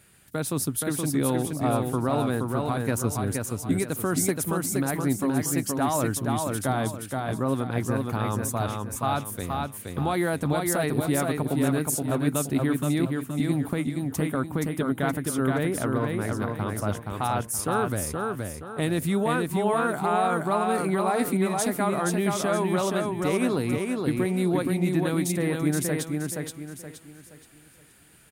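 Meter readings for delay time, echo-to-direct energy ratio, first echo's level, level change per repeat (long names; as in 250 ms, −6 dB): 473 ms, −3.0 dB, −3.5 dB, −9.0 dB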